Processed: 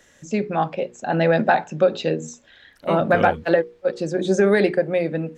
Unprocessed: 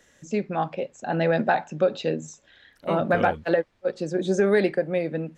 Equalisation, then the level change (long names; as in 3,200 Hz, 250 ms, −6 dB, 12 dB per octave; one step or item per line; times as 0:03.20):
mains-hum notches 60/120/180/240/300/360/420/480 Hz
+4.5 dB